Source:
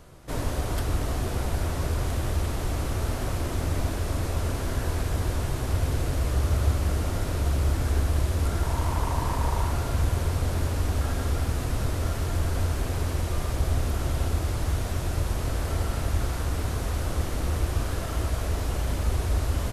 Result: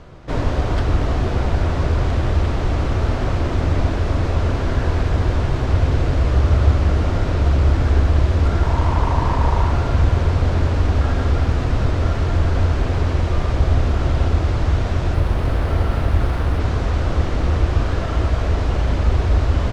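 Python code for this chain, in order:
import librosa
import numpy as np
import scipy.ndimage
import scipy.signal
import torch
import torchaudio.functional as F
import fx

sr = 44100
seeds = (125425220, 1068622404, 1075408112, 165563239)

y = fx.air_absorb(x, sr, metres=160.0)
y = fx.resample_linear(y, sr, factor=3, at=(15.14, 16.6))
y = F.gain(torch.from_numpy(y), 9.0).numpy()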